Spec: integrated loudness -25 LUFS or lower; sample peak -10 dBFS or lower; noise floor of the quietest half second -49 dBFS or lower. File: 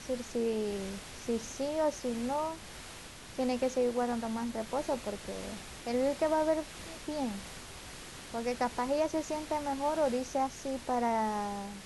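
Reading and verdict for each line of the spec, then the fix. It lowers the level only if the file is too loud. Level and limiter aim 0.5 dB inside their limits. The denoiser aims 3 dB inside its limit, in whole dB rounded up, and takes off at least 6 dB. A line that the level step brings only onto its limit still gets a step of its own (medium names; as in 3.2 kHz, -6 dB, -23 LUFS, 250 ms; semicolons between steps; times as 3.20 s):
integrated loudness -33.5 LUFS: pass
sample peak -18.0 dBFS: pass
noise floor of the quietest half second -48 dBFS: fail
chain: noise reduction 6 dB, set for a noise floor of -48 dBFS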